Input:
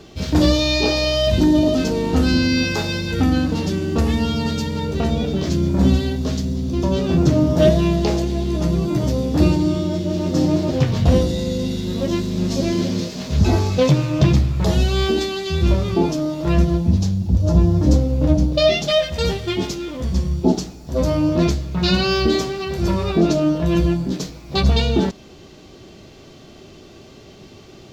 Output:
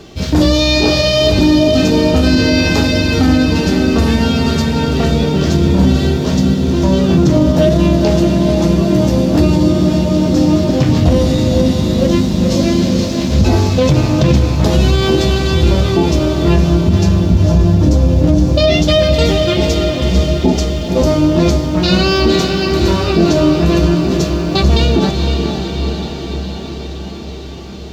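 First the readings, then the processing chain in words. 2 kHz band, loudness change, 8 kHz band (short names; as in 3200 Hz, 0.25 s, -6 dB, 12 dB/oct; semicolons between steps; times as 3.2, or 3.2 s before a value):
+7.0 dB, +6.5 dB, +7.0 dB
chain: diffused feedback echo 0.507 s, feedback 68%, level -6.5 dB; maximiser +7 dB; gain -1 dB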